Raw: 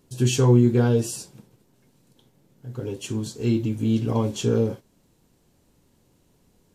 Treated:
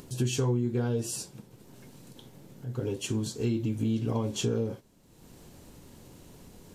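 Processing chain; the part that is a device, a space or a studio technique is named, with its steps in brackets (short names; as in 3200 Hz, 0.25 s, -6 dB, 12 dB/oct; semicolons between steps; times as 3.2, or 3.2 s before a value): upward and downward compression (upward compressor, threshold -39 dBFS; compressor 4:1, threshold -26 dBFS, peak gain reduction 13 dB)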